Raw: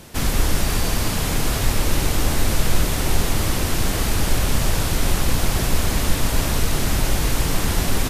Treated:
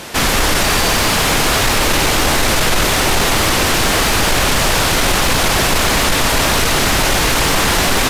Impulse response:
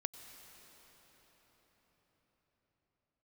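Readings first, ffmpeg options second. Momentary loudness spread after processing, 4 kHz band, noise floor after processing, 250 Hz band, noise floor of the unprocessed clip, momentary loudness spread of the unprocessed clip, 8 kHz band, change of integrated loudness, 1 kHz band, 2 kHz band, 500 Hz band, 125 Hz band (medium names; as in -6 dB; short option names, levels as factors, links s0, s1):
0 LU, +12.0 dB, -15 dBFS, +5.5 dB, -23 dBFS, 1 LU, +9.0 dB, +9.0 dB, +12.5 dB, +13.5 dB, +10.0 dB, +1.5 dB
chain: -filter_complex "[0:a]acontrast=73,asplit=2[s0][s1];[s1]highpass=f=720:p=1,volume=7.08,asoftclip=type=tanh:threshold=0.841[s2];[s0][s2]amix=inputs=2:normalize=0,lowpass=f=4500:p=1,volume=0.501,volume=0.891"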